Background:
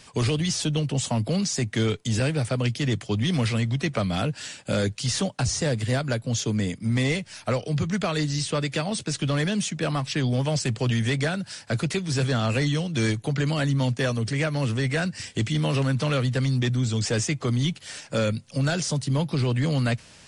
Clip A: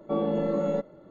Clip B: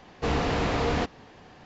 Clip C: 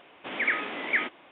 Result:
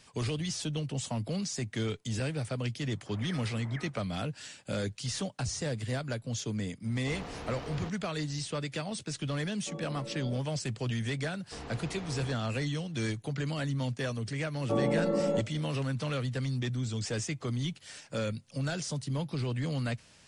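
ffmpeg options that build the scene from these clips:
-filter_complex "[2:a]asplit=2[a][b];[1:a]asplit=2[c][d];[0:a]volume=-9dB[e];[3:a]lowpass=f=1.6k:w=0.5412,lowpass=f=1.6k:w=1.3066[f];[a]aeval=exprs='clip(val(0),-1,0.0501)':c=same[g];[f]atrim=end=1.31,asetpts=PTS-STARTPTS,volume=-14.5dB,afade=t=in:d=0.004:c=hsin,afade=t=out:st=1.306:d=0.004:c=hsin,adelay=2810[h];[g]atrim=end=1.65,asetpts=PTS-STARTPTS,volume=-14.5dB,afade=t=in:d=0.004:c=hsin,afade=t=out:st=1.646:d=0.004:c=hsin,adelay=6840[i];[c]atrim=end=1.1,asetpts=PTS-STARTPTS,volume=-16.5dB,afade=t=in:d=0.004:c=hsin,afade=t=out:st=1.096:d=0.004:c=hsin,adelay=9570[j];[b]atrim=end=1.65,asetpts=PTS-STARTPTS,volume=-18dB,afade=t=in:d=0.004:c=hsin,afade=t=out:st=1.646:d=0.004:c=hsin,adelay=11290[k];[d]atrim=end=1.1,asetpts=PTS-STARTPTS,volume=-2dB,afade=t=in:d=0.004:c=hsin,afade=t=out:st=1.096:d=0.004:c=hsin,adelay=643860S[l];[e][h][i][j][k][l]amix=inputs=6:normalize=0"

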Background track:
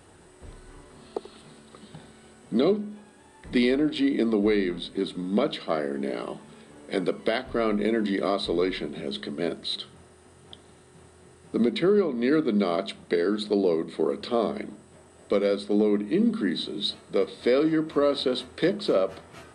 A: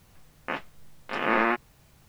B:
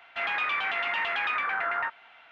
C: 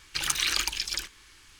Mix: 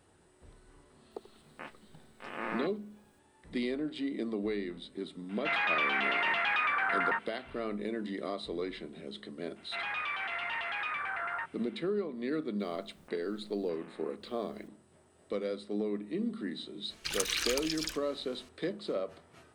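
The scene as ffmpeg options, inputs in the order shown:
-filter_complex "[1:a]asplit=2[a][b];[2:a]asplit=2[c][d];[0:a]volume=-11.5dB[e];[b]acompressor=threshold=-45dB:ratio=6:attack=3.2:release=140:knee=1:detection=peak[f];[a]atrim=end=2.08,asetpts=PTS-STARTPTS,volume=-14dB,afade=t=in:d=0.004:c=hsin,afade=t=out:st=2.076:d=0.004:c=hsin,adelay=1110[g];[c]atrim=end=2.31,asetpts=PTS-STARTPTS,volume=-1dB,afade=t=in:d=0.004:c=hsin,afade=t=out:st=2.306:d=0.004:c=hsin,adelay=233289S[h];[d]atrim=end=2.31,asetpts=PTS-STARTPTS,volume=-7dB,afade=t=in:d=0.004:c=hsin,afade=t=out:st=2.306:d=0.004:c=hsin,adelay=9560[i];[f]atrim=end=2.08,asetpts=PTS-STARTPTS,volume=-8dB,afade=t=in:d=0.004:c=hsin,afade=t=out:st=2.076:d=0.004:c=hsin,adelay=12600[j];[3:a]atrim=end=1.59,asetpts=PTS-STARTPTS,volume=-6dB,afade=t=in:d=0.004:c=hsin,afade=t=out:st=1.586:d=0.004:c=hsin,adelay=16900[k];[e][g][h][i][j][k]amix=inputs=6:normalize=0"

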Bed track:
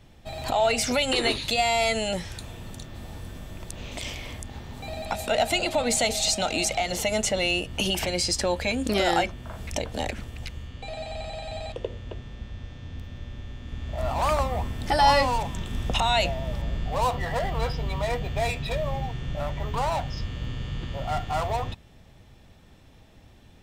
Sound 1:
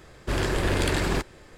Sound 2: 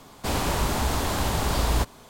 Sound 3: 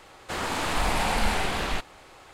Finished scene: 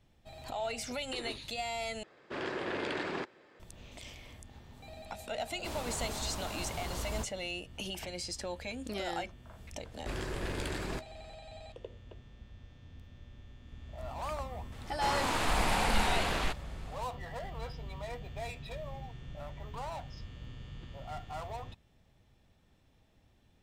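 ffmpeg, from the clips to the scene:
-filter_complex "[1:a]asplit=2[a][b];[0:a]volume=-14dB[c];[a]highpass=260,lowpass=3.5k[d];[b]asplit=2[e][f];[f]adelay=16,volume=-12.5dB[g];[e][g]amix=inputs=2:normalize=0[h];[c]asplit=2[i][j];[i]atrim=end=2.034[k];[d]atrim=end=1.57,asetpts=PTS-STARTPTS,volume=-8dB[l];[j]atrim=start=3.596[m];[2:a]atrim=end=2.09,asetpts=PTS-STARTPTS,volume=-15dB,afade=t=in:d=0.004:c=hsin,afade=t=out:st=2.086:d=0.004:c=hsin,adelay=5400[n];[h]atrim=end=1.57,asetpts=PTS-STARTPTS,volume=-12.5dB,afade=t=in:d=0.004:c=hsin,afade=t=out:st=1.566:d=0.004:c=hsin,adelay=431298S[o];[3:a]atrim=end=2.33,asetpts=PTS-STARTPTS,volume=-4dB,afade=t=in:d=0.004:c=hsin,afade=t=out:st=2.326:d=0.004:c=hsin,adelay=14720[p];[k][l]acrossfade=d=0.004:c1=hsin:c2=hsin[q];[q][m]acrossfade=d=0.004:c1=hsin:c2=hsin[r];[r][n][o][p]amix=inputs=4:normalize=0"

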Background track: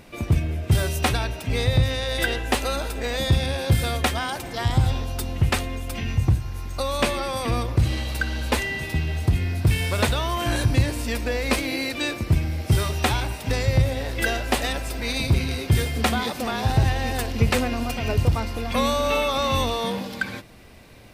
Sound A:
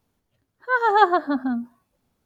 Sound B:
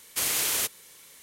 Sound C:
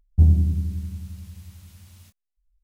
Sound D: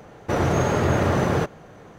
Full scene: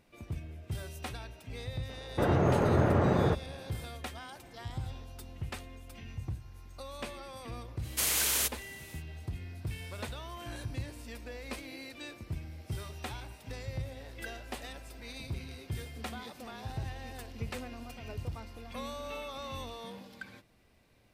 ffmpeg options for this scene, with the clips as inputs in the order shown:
-filter_complex "[0:a]volume=-18.5dB[a];[4:a]lowpass=f=1.2k:p=1,atrim=end=1.98,asetpts=PTS-STARTPTS,volume=-4.5dB,afade=t=in:d=0.004:c=hsin,afade=t=out:st=1.976:d=0.004:c=hsin,adelay=1890[b];[2:a]atrim=end=1.22,asetpts=PTS-STARTPTS,volume=-2.5dB,afade=t=in:d=0.05,afade=t=out:st=1.17:d=0.05,adelay=7810[c];[a][b][c]amix=inputs=3:normalize=0"

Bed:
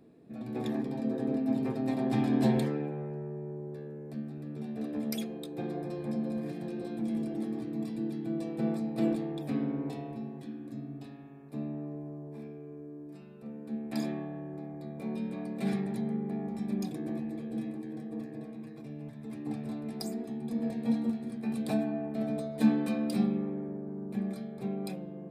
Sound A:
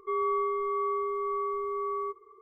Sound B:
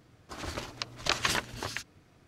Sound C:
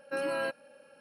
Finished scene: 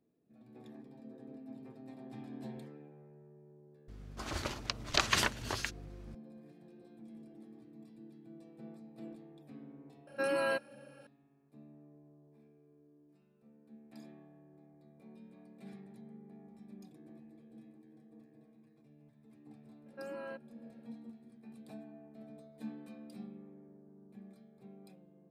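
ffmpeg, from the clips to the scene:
-filter_complex "[3:a]asplit=2[a][b];[0:a]volume=-19.5dB[c];[2:a]aeval=exprs='val(0)+0.00447*(sin(2*PI*50*n/s)+sin(2*PI*2*50*n/s)/2+sin(2*PI*3*50*n/s)/3+sin(2*PI*4*50*n/s)/4+sin(2*PI*5*50*n/s)/5)':c=same[d];[b]lowpass=f=1.3k:p=1[e];[d]atrim=end=2.27,asetpts=PTS-STARTPTS,volume=-1dB,afade=t=in:d=0.004:c=hsin,afade=t=out:st=2.266:d=0.004:c=hsin,adelay=3880[f];[a]atrim=end=1,asetpts=PTS-STARTPTS,afade=t=in:d=0.004:c=hsin,afade=t=out:st=0.996:d=0.004:c=hsin,adelay=10070[g];[e]atrim=end=1,asetpts=PTS-STARTPTS,volume=-10.5dB,afade=t=in:d=0.004:c=hsin,afade=t=out:st=0.996:d=0.004:c=hsin,adelay=19860[h];[c][f][g][h]amix=inputs=4:normalize=0"

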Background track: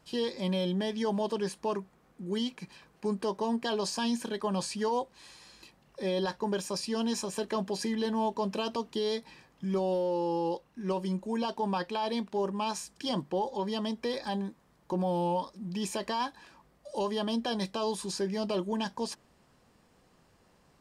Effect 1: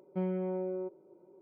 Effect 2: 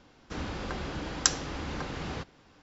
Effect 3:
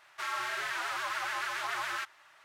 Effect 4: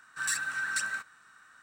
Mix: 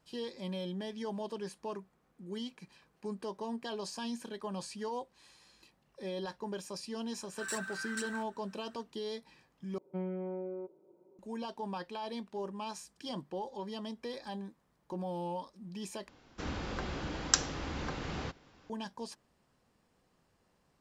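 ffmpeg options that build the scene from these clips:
-filter_complex "[0:a]volume=-8.5dB,asplit=3[a][b][c];[a]atrim=end=9.784[d];[1:a]atrim=end=1.41,asetpts=PTS-STARTPTS,volume=-4.5dB[e];[b]atrim=start=11.186:end=16.084[f];[2:a]atrim=end=2.62,asetpts=PTS-STARTPTS,volume=-2.5dB[g];[c]atrim=start=18.696[h];[4:a]atrim=end=1.62,asetpts=PTS-STARTPTS,volume=-9dB,afade=t=in:d=0.004:c=hsin,afade=t=out:st=1.616:d=0.004:c=hsin,adelay=7210[i];[d][e]acrossfade=d=0.004:c1=hsin:c2=hsin[j];[j][f]acrossfade=d=0.004:c1=hsin:c2=hsin[k];[k][g]acrossfade=d=0.004:c1=hsin:c2=hsin[l];[l][h]acrossfade=d=0.004:c1=hsin:c2=hsin[m];[m][i]amix=inputs=2:normalize=0"

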